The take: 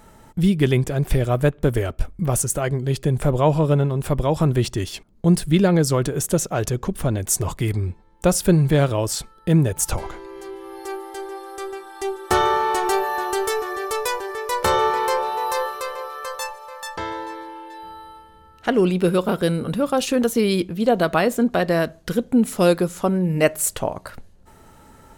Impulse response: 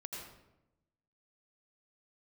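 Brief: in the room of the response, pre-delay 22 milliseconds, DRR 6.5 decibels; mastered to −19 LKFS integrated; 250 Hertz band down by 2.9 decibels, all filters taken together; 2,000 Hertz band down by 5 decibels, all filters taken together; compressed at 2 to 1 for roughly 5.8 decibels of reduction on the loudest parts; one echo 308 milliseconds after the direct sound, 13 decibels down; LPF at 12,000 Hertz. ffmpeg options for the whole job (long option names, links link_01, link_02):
-filter_complex "[0:a]lowpass=12000,equalizer=frequency=250:width_type=o:gain=-4.5,equalizer=frequency=2000:width_type=o:gain=-6.5,acompressor=threshold=-24dB:ratio=2,aecho=1:1:308:0.224,asplit=2[link_01][link_02];[1:a]atrim=start_sample=2205,adelay=22[link_03];[link_02][link_03]afir=irnorm=-1:irlink=0,volume=-5dB[link_04];[link_01][link_04]amix=inputs=2:normalize=0,volume=7dB"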